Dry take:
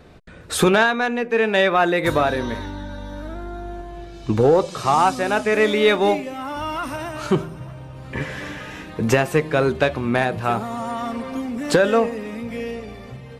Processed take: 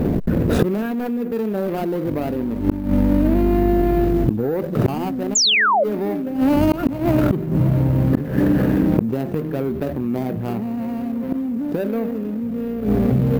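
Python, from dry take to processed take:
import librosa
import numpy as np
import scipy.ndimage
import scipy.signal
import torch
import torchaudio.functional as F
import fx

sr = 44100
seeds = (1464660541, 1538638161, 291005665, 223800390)

p1 = scipy.ndimage.median_filter(x, 41, mode='constant')
p2 = fx.high_shelf(p1, sr, hz=3500.0, db=-7.5)
p3 = np.repeat(p2[::3], 3)[:len(p2)]
p4 = fx.peak_eq(p3, sr, hz=240.0, db=10.5, octaves=1.5)
p5 = fx.gate_flip(p4, sr, shuts_db=-17.0, range_db=-36)
p6 = fx.rider(p5, sr, range_db=5, speed_s=0.5)
p7 = p5 + (p6 * librosa.db_to_amplitude(0.5))
p8 = fx.quant_float(p7, sr, bits=6)
p9 = fx.spec_paint(p8, sr, seeds[0], shape='fall', start_s=5.35, length_s=0.49, low_hz=520.0, high_hz=7500.0, level_db=-23.0)
p10 = fx.env_flatten(p9, sr, amount_pct=70)
y = p10 * librosa.db_to_amplitude(3.5)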